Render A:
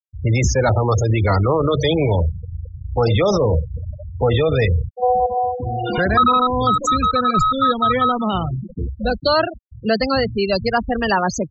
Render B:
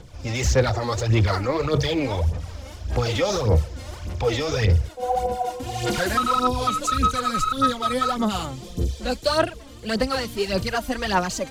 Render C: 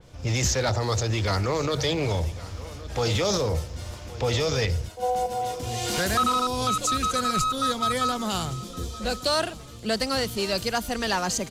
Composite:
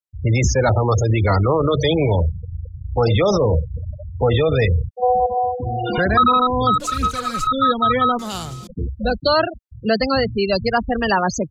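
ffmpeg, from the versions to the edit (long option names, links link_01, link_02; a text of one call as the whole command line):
ffmpeg -i take0.wav -i take1.wav -i take2.wav -filter_complex "[0:a]asplit=3[link_01][link_02][link_03];[link_01]atrim=end=6.802[link_04];[1:a]atrim=start=6.798:end=7.472[link_05];[link_02]atrim=start=7.468:end=8.192[link_06];[2:a]atrim=start=8.188:end=8.672[link_07];[link_03]atrim=start=8.668[link_08];[link_04][link_05]acrossfade=duration=0.004:curve1=hsin:curve2=hsin[link_09];[link_09][link_06]acrossfade=duration=0.004:curve1=hsin:curve2=hsin[link_10];[link_10][link_07]acrossfade=duration=0.004:curve1=hsin:curve2=hsin[link_11];[link_11][link_08]acrossfade=duration=0.004:curve1=hsin:curve2=hsin" out.wav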